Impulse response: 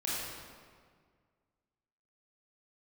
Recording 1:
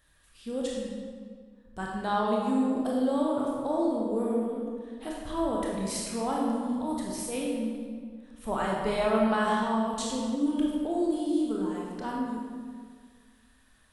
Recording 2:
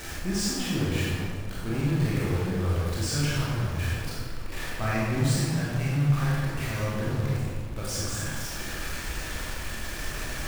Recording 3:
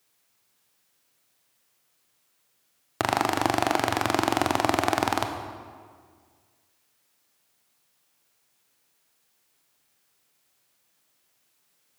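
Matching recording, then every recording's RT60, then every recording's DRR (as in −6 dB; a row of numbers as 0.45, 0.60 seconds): 2; 1.8, 1.8, 1.8 seconds; −3.5, −7.5, 5.5 decibels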